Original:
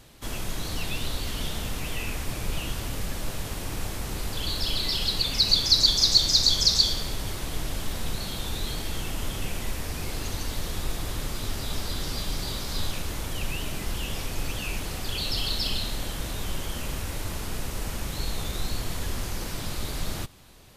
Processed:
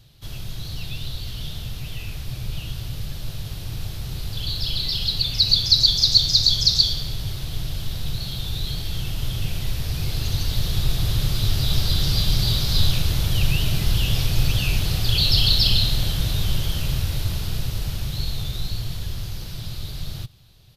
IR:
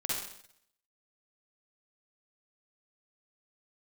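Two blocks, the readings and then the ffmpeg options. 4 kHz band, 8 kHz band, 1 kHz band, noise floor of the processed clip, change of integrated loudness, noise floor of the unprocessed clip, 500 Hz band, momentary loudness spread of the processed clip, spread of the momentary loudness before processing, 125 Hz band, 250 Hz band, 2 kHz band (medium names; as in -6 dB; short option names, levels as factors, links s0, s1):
+4.5 dB, -1.0 dB, -3.0 dB, -34 dBFS, +5.5 dB, -35 dBFS, -1.5 dB, 17 LU, 15 LU, +10.5 dB, +3.0 dB, +1.0 dB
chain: -af "equalizer=f=125:t=o:w=1:g=10,equalizer=f=250:t=o:w=1:g=-10,equalizer=f=500:t=o:w=1:g=-5,equalizer=f=1000:t=o:w=1:g=-8,equalizer=f=2000:t=o:w=1:g=-7,equalizer=f=4000:t=o:w=1:g=6,equalizer=f=8000:t=o:w=1:g=-10,dynaudnorm=f=240:g=31:m=4.73,aresample=32000,aresample=44100,volume=0.891"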